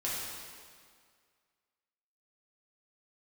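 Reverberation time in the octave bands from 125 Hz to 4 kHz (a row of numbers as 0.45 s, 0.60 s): 1.8 s, 1.9 s, 2.0 s, 2.0 s, 1.8 s, 1.7 s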